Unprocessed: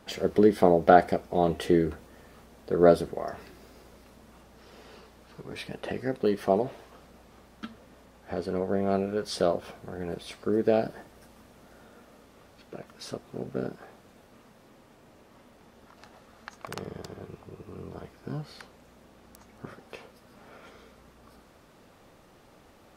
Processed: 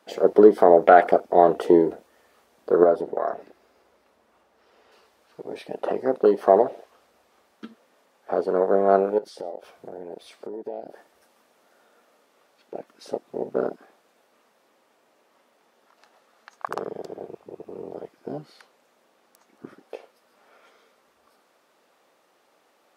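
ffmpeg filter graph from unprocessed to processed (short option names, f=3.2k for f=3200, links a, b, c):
-filter_complex "[0:a]asettb=1/sr,asplit=3[a][b][c];[a]atrim=end=2.834[d];[b]atrim=start=2.83:end=4.92,asetpts=PTS-STARTPTS,afade=t=in:d=0.004:c=qsin,afade=t=out:st=2.086:d=0.004:c=qsin,acompressor=threshold=-30dB:ratio=2:attack=3.2:release=140:knee=1:detection=peak,highshelf=f=3.3k:g=-9[e];[c]atrim=start=4.916[f];[d][e]acrossfade=d=0.004:c1=hsin:c2=qsin[g];[g][f]acrossfade=d=0.004:c1=qsin:c2=hsin,asettb=1/sr,asplit=3[h][i][j];[h]atrim=end=9.184[k];[i]atrim=start=9.18:end=12.75,asetpts=PTS-STARTPTS,afade=t=in:d=0.004:c=qsin,afade=t=out:st=3.566:d=0.004:c=qsin,acompressor=threshold=-38dB:ratio=8:attack=3.2:release=140:knee=1:detection=peak,aecho=1:1:121:0.0708,atrim=end_sample=157437[l];[j]atrim=start=12.746[m];[k][l]acrossfade=d=0.004:c1=hsin:c2=qsin[n];[n][m]acrossfade=d=0.004:c1=qsin:c2=hsin,afwtdn=0.0141,highpass=440,alimiter=level_in=13dB:limit=-1dB:release=50:level=0:latency=1,volume=-1dB"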